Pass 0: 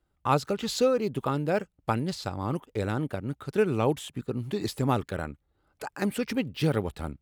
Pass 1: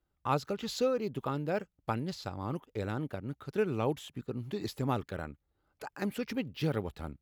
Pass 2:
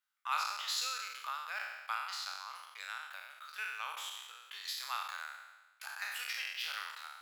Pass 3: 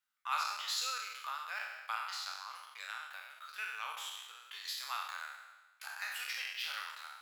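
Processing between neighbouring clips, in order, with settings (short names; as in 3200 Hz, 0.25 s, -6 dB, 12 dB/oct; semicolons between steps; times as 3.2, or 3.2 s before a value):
bell 8800 Hz -13.5 dB 0.22 oct; gain -6 dB
spectral trails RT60 1.16 s; inverse Chebyshev high-pass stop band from 280 Hz, stop band 70 dB; gain +1 dB
flange 1.1 Hz, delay 7.4 ms, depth 5.8 ms, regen +49%; gain +3.5 dB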